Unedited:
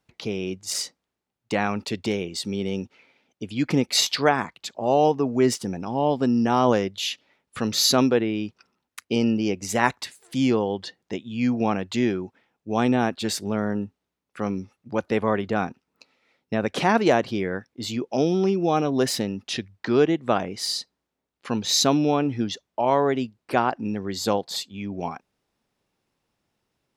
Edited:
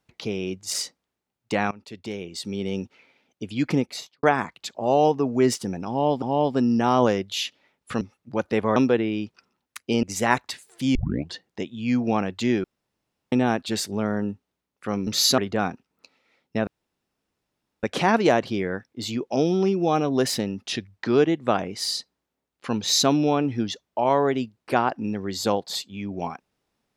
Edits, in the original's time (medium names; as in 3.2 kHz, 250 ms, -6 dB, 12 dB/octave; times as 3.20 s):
1.71–2.78 s: fade in, from -20.5 dB
3.65–4.23 s: studio fade out
5.88–6.22 s: loop, 2 plays
7.67–7.98 s: swap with 14.60–15.35 s
9.25–9.56 s: delete
10.48 s: tape start 0.36 s
12.17–12.85 s: room tone
16.64 s: insert room tone 1.16 s